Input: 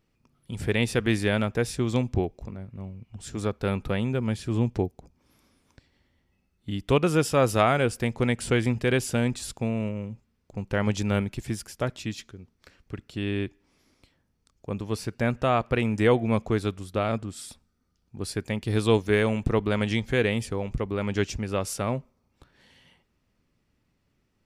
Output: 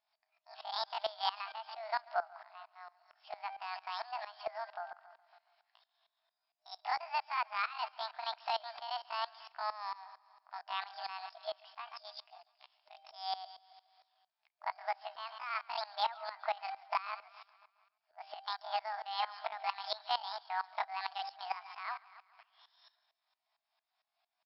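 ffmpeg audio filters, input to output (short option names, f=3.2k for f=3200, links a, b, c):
-af "afftfilt=real='re*between(b*sr/4096,330,2900)':imag='im*between(b*sr/4096,330,2900)':win_size=4096:overlap=0.75,bandreject=f=416.5:t=h:w=4,bandreject=f=833:t=h:w=4,bandreject=f=1.2495k:t=h:w=4,bandreject=f=1.666k:t=h:w=4,bandreject=f=2.0825k:t=h:w=4,bandreject=f=2.499k:t=h:w=4,bandreject=f=2.9155k:t=h:w=4,bandreject=f=3.332k:t=h:w=4,bandreject=f=3.7485k:t=h:w=4,bandreject=f=4.165k:t=h:w=4,adynamicequalizer=threshold=0.00891:dfrequency=760:dqfactor=1.9:tfrequency=760:tqfactor=1.9:attack=5:release=100:ratio=0.375:range=2:mode=boostabove:tftype=bell,acompressor=threshold=-28dB:ratio=8,asetrate=83250,aresample=44100,atempo=0.529732,aecho=1:1:139|278|417|556|695|834:0.141|0.0833|0.0492|0.029|0.0171|0.0101,aeval=exprs='val(0)*pow(10,-19*if(lt(mod(-4.4*n/s,1),2*abs(-4.4)/1000),1-mod(-4.4*n/s,1)/(2*abs(-4.4)/1000),(mod(-4.4*n/s,1)-2*abs(-4.4)/1000)/(1-2*abs(-4.4)/1000))/20)':c=same,volume=1.5dB"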